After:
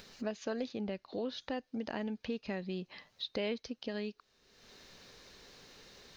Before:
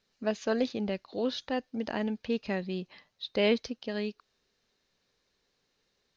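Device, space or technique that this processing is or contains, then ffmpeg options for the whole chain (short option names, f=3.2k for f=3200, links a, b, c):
upward and downward compression: -filter_complex "[0:a]acompressor=mode=upward:threshold=-46dB:ratio=2.5,acompressor=threshold=-42dB:ratio=3,asettb=1/sr,asplit=3[a][b][c];[a]atrim=end=0.754[d];[b]atrim=start=0.75:end=1.41,asetpts=PTS-STARTPTS,afade=t=in:d=0.004:c=qsin,afade=t=out:st=0.656:d=0.004:c=qsin,highshelf=f=5.3k:g=-6[e];[c]atrim=start=1.406[f];[d][e]acrossfade=d=0.004:c1=hsin:c2=qsin[g];[g][f]acrossfade=d=0.004:c1=qsin:c2=hsin,volume=4dB"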